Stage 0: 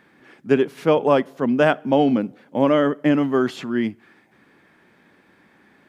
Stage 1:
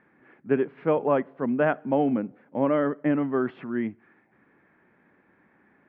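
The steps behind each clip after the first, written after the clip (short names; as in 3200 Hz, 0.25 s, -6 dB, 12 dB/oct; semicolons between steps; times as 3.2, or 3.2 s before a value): LPF 2200 Hz 24 dB/oct; gain -6 dB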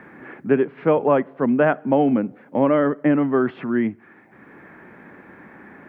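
three-band squash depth 40%; gain +6 dB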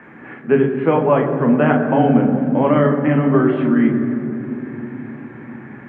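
reverb RT60 3.6 s, pre-delay 11 ms, DRR 1 dB; gain -5.5 dB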